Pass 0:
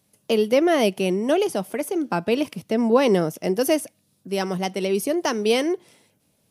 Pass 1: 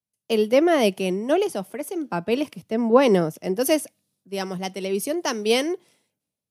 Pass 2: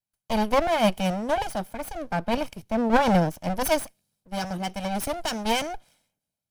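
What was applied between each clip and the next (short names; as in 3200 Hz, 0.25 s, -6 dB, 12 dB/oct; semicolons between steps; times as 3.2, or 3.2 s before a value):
three-band expander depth 70%; gain -1 dB
minimum comb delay 1.3 ms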